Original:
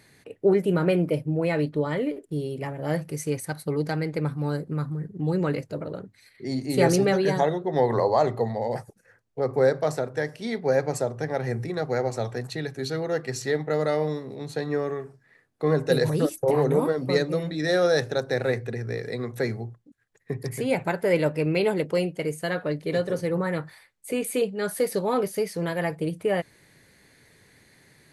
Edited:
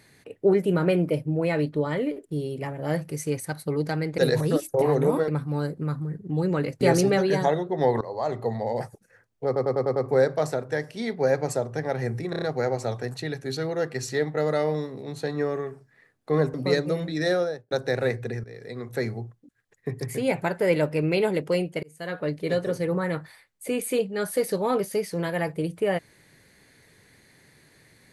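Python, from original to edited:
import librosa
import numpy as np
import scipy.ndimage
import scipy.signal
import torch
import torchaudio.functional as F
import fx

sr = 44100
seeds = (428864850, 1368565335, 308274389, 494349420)

y = fx.studio_fade_out(x, sr, start_s=17.65, length_s=0.49)
y = fx.edit(y, sr, fx.cut(start_s=5.71, length_s=1.05),
    fx.fade_in_from(start_s=7.96, length_s=0.59, floor_db=-19.5),
    fx.stutter(start_s=9.41, slice_s=0.1, count=6),
    fx.stutter(start_s=11.75, slice_s=0.03, count=5),
    fx.move(start_s=15.87, length_s=1.1, to_s=4.18),
    fx.fade_in_from(start_s=18.87, length_s=0.66, floor_db=-16.5),
    fx.fade_in_span(start_s=22.26, length_s=0.45), tone=tone)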